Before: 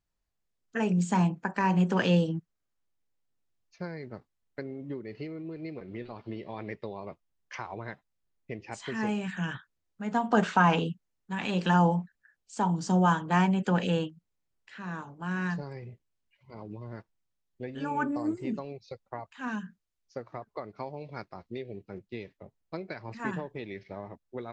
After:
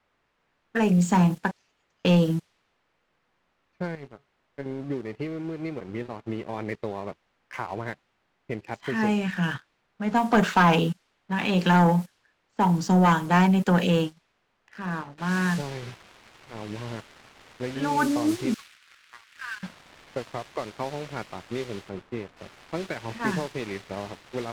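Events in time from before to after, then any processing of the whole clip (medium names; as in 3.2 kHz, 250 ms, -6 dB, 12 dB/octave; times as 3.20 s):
1.51–2.05 s: inverse Chebyshev high-pass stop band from 940 Hz, stop band 80 dB
3.95–4.66 s: feedback comb 140 Hz, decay 0.19 s, mix 80%
15.18 s: noise floor step -58 dB -43 dB
18.54–19.63 s: steep high-pass 1.3 kHz
21.89–22.37 s: treble shelf 2.3 kHz -11 dB
whole clip: level-controlled noise filter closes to 1.8 kHz, open at -23 dBFS; waveshaping leveller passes 2; trim -1 dB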